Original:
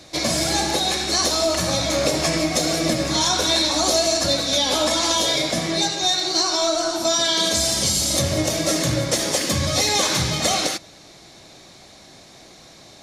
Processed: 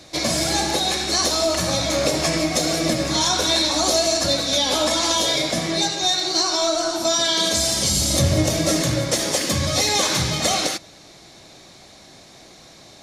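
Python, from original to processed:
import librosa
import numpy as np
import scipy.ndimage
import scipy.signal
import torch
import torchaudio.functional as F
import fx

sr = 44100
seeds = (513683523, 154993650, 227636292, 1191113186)

y = fx.low_shelf(x, sr, hz=200.0, db=8.0, at=(7.91, 8.82))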